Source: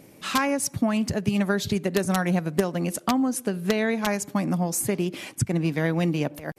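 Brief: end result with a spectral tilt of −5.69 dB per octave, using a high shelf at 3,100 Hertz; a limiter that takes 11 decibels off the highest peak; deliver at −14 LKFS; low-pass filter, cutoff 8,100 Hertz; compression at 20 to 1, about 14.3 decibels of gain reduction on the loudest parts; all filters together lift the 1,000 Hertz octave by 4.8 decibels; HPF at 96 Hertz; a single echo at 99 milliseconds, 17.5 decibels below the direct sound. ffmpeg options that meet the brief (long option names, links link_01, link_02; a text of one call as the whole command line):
ffmpeg -i in.wav -af "highpass=96,lowpass=8100,equalizer=frequency=1000:width_type=o:gain=7,highshelf=frequency=3100:gain=-8,acompressor=threshold=-30dB:ratio=20,alimiter=level_in=2dB:limit=-24dB:level=0:latency=1,volume=-2dB,aecho=1:1:99:0.133,volume=23dB" out.wav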